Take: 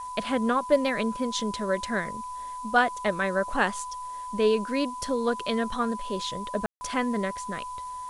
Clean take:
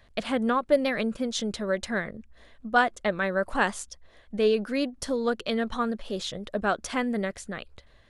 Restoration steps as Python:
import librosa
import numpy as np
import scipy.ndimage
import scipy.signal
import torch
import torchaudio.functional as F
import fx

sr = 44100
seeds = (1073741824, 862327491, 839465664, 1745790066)

y = fx.notch(x, sr, hz=1000.0, q=30.0)
y = fx.fix_ambience(y, sr, seeds[0], print_start_s=3.83, print_end_s=4.33, start_s=6.66, end_s=6.81)
y = fx.noise_reduce(y, sr, print_start_s=3.83, print_end_s=4.33, reduce_db=17.0)